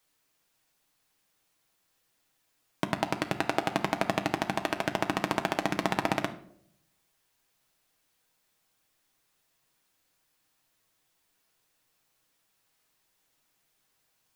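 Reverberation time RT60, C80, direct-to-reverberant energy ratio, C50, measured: 0.65 s, 16.5 dB, 5.5 dB, 13.0 dB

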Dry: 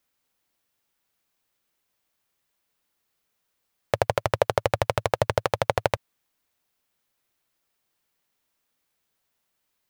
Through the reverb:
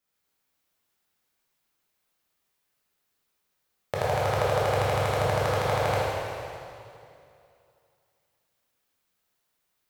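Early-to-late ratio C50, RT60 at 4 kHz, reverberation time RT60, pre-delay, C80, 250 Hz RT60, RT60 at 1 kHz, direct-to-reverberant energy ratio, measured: -4.0 dB, 2.3 s, 2.5 s, 7 ms, -2.0 dB, 2.6 s, 2.5 s, -8.0 dB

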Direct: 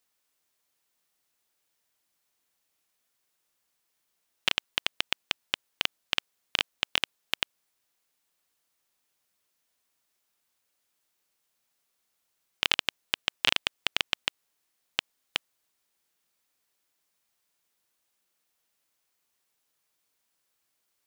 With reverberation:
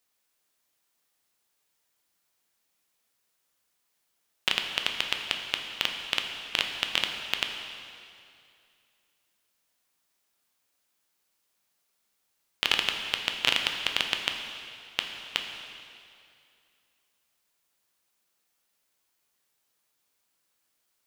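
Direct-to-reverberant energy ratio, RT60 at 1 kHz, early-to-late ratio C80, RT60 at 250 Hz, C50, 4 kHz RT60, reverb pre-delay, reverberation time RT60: 3.0 dB, 2.4 s, 5.5 dB, 2.4 s, 5.0 dB, 2.3 s, 5 ms, 2.4 s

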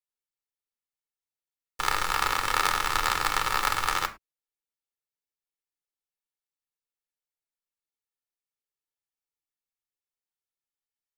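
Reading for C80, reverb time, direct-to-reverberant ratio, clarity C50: 22.0 dB, no single decay rate, 7.5 dB, 16.5 dB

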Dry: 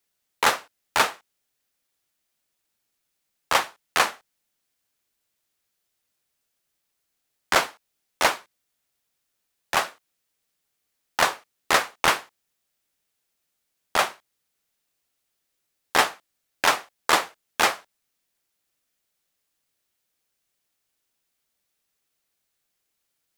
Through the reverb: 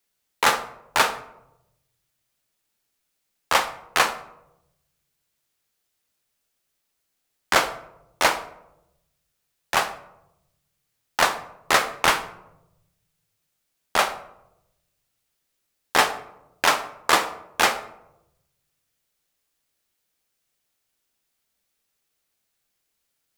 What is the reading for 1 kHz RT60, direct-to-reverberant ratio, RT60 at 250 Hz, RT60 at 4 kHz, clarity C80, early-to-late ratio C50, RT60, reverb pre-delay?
0.75 s, 10.0 dB, 1.2 s, 0.45 s, 15.5 dB, 13.0 dB, 0.90 s, 13 ms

